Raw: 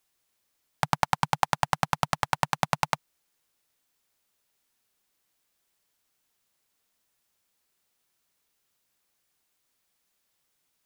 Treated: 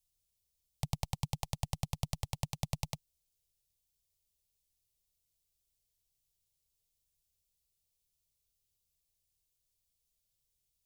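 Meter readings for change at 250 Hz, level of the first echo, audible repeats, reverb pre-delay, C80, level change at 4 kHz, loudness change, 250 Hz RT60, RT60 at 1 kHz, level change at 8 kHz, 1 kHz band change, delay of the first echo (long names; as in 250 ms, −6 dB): −6.5 dB, no echo audible, no echo audible, no reverb audible, no reverb audible, −10.0 dB, −11.5 dB, no reverb audible, no reverb audible, −6.5 dB, −21.0 dB, no echo audible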